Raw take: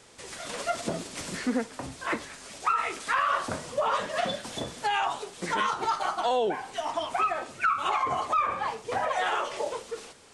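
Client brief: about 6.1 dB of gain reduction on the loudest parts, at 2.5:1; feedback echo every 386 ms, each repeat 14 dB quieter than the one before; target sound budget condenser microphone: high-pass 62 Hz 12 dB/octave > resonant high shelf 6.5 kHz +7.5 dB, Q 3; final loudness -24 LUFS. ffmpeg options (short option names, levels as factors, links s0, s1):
-af "acompressor=threshold=0.0282:ratio=2.5,highpass=62,highshelf=f=6500:t=q:w=3:g=7.5,aecho=1:1:386|772:0.2|0.0399,volume=2.66"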